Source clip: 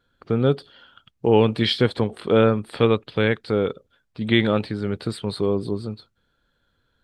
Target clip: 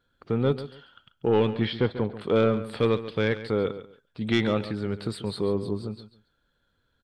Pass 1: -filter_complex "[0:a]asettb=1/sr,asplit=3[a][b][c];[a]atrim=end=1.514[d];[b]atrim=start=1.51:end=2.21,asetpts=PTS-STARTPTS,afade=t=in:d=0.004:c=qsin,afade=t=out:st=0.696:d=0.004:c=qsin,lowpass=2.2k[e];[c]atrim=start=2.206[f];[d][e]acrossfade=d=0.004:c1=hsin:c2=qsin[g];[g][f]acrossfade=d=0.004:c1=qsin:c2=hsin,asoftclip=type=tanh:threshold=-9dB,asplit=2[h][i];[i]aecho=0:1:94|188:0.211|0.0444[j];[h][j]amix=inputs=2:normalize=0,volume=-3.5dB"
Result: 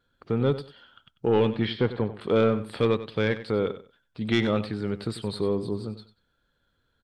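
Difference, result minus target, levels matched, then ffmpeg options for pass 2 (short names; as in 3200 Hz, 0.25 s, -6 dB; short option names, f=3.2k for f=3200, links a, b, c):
echo 45 ms early
-filter_complex "[0:a]asettb=1/sr,asplit=3[a][b][c];[a]atrim=end=1.514[d];[b]atrim=start=1.51:end=2.21,asetpts=PTS-STARTPTS,afade=t=in:d=0.004:c=qsin,afade=t=out:st=0.696:d=0.004:c=qsin,lowpass=2.2k[e];[c]atrim=start=2.206[f];[d][e]acrossfade=d=0.004:c1=hsin:c2=qsin[g];[g][f]acrossfade=d=0.004:c1=qsin:c2=hsin,asoftclip=type=tanh:threshold=-9dB,asplit=2[h][i];[i]aecho=0:1:139|278:0.211|0.0444[j];[h][j]amix=inputs=2:normalize=0,volume=-3.5dB"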